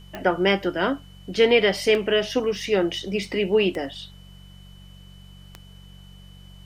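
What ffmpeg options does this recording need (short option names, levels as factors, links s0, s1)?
-af "adeclick=t=4,bandreject=f=47.1:t=h:w=4,bandreject=f=94.2:t=h:w=4,bandreject=f=141.3:t=h:w=4,bandreject=f=188.4:t=h:w=4,bandreject=f=3000:w=30,agate=range=0.0891:threshold=0.0126"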